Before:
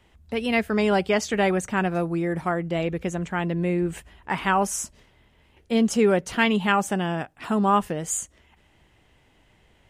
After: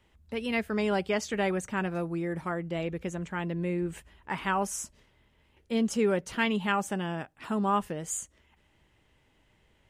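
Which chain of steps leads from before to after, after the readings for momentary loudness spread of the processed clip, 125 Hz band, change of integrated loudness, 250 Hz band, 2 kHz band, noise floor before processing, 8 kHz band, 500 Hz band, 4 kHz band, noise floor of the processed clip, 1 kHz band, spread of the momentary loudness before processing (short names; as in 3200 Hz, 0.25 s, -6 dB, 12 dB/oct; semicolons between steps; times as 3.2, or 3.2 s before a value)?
8 LU, -6.5 dB, -6.5 dB, -6.5 dB, -6.5 dB, -61 dBFS, -6.5 dB, -6.5 dB, -6.5 dB, -67 dBFS, -7.0 dB, 9 LU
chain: notch 720 Hz, Q 12; gain -6.5 dB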